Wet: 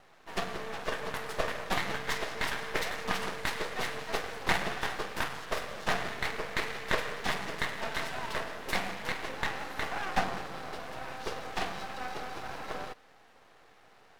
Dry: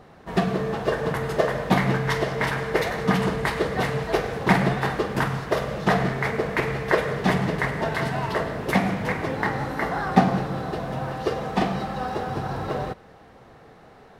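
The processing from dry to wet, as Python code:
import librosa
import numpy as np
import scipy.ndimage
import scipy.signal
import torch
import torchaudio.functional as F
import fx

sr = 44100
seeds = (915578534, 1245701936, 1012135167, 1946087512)

y = fx.highpass(x, sr, hz=1100.0, slope=6)
y = np.maximum(y, 0.0)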